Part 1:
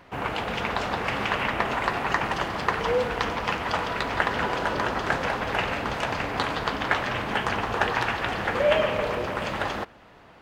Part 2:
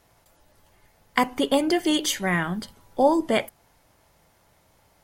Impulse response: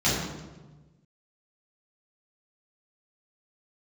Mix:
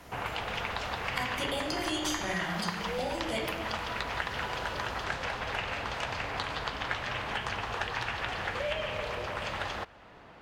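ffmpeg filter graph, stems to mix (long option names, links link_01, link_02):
-filter_complex "[0:a]highshelf=frequency=11000:gain=-10,volume=-1dB[link_01];[1:a]acompressor=threshold=-27dB:ratio=6,volume=3dB,asplit=2[link_02][link_03];[link_03]volume=-10.5dB[link_04];[2:a]atrim=start_sample=2205[link_05];[link_04][link_05]afir=irnorm=-1:irlink=0[link_06];[link_01][link_02][link_06]amix=inputs=3:normalize=0,acrossover=split=130|430|2400[link_07][link_08][link_09][link_10];[link_07]acompressor=threshold=-42dB:ratio=4[link_11];[link_08]acompressor=threshold=-54dB:ratio=4[link_12];[link_09]acompressor=threshold=-35dB:ratio=4[link_13];[link_10]acompressor=threshold=-36dB:ratio=4[link_14];[link_11][link_12][link_13][link_14]amix=inputs=4:normalize=0"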